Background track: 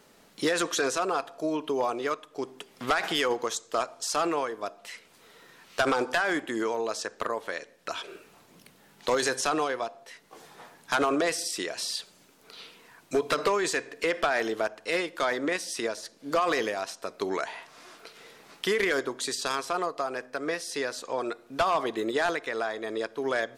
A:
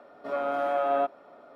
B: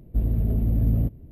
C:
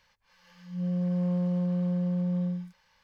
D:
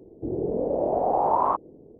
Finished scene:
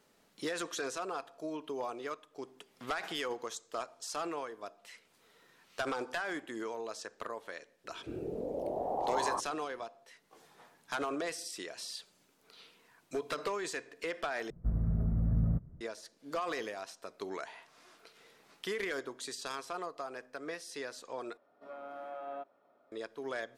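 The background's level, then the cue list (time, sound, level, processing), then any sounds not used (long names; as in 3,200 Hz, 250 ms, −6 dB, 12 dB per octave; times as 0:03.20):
background track −10.5 dB
0:07.84: mix in D −11.5 dB
0:14.50: overwrite with B −9 dB + drawn EQ curve 110 Hz 0 dB, 160 Hz +8 dB, 280 Hz −6 dB, 870 Hz +4 dB, 1,300 Hz +13 dB, 2,100 Hz 0 dB, 3,100 Hz −24 dB, 5,600 Hz +4 dB, 8,300 Hz −17 dB
0:21.37: overwrite with A −17 dB
not used: C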